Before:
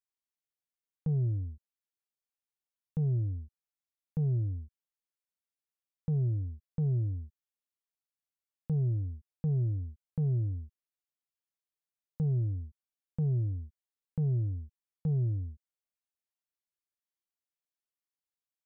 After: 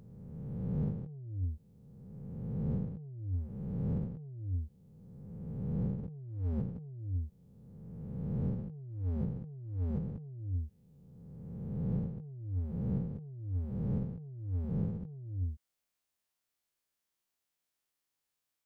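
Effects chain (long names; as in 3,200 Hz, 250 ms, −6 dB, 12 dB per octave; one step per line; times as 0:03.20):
peak hold with a rise ahead of every peak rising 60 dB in 2.06 s
compressor whose output falls as the input rises −35 dBFS, ratio −0.5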